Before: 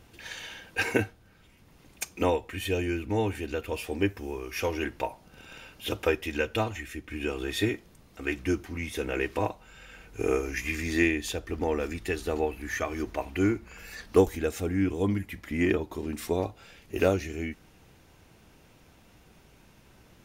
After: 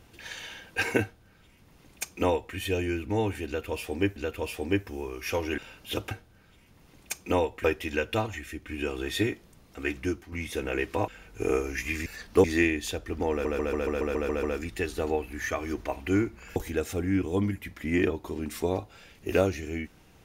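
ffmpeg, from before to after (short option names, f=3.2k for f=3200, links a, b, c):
-filter_complex "[0:a]asplit=18[a][b][c][d][e][f][g][h][i][j][k][l][m][n][o][p][q][r];[a]atrim=end=4.162[s];[b]atrim=start=3.458:end=4.882[t];[c]atrim=start=5.528:end=6.062[u];[d]atrim=start=1.018:end=2.552[v];[e]atrim=start=6.058:end=8.74,asetpts=PTS-STARTPTS,afade=t=out:st=2.322:d=0.36:silence=0.354813[w];[f]atrim=start=8.74:end=9.502,asetpts=PTS-STARTPTS,afade=t=in:d=0.004:c=hsin:silence=0.354813[x];[g]atrim=start=9.868:end=10.852[y];[h]atrim=start=13.848:end=14.232[z];[i]atrim=start=10.848:end=11.862[aa];[j]atrim=start=11.718:end=11.862[ab];[k]atrim=start=11.718:end=11.862[ac];[l]atrim=start=11.718:end=11.862[ad];[m]atrim=start=11.718:end=11.862[ae];[n]atrim=start=11.718:end=11.862[af];[o]atrim=start=11.718:end=11.862[ag];[p]atrim=start=11.718:end=11.862[ah];[q]atrim=start=11.718:end=13.852[ai];[r]atrim=start=14.228[aj];[s][t]acrossfade=d=0.004:c1=hsin:c2=hsin[ak];[ak][u]acrossfade=d=0.004:c1=hsin:c2=hsin[al];[al][v]acrossfade=d=0.004:c1=hsin:c2=hsin[am];[w][x]concat=n=2:v=0:a=1[an];[am][an]acrossfade=d=0.004:c1=hsin:c2=hsin[ao];[ao][y]acrossfade=d=0.004:c1=hsin:c2=hsin[ap];[ap][z]acrossfade=d=0.004:c1=hsin:c2=hsin[aq];[aq][aa]acrossfade=d=0.004:c1=hsin:c2=hsin[ar];[ar][ab]acrossfade=d=0.004:c1=hsin:c2=hsin[as];[as][ac]acrossfade=d=0.004:c1=hsin:c2=hsin[at];[at][ad]acrossfade=d=0.004:c1=hsin:c2=hsin[au];[au][ae]acrossfade=d=0.004:c1=hsin:c2=hsin[av];[av][af]acrossfade=d=0.004:c1=hsin:c2=hsin[aw];[aw][ag]acrossfade=d=0.004:c1=hsin:c2=hsin[ax];[ax][ah]acrossfade=d=0.004:c1=hsin:c2=hsin[ay];[ay][ai]acrossfade=d=0.004:c1=hsin:c2=hsin[az];[az][aj]acrossfade=d=0.004:c1=hsin:c2=hsin"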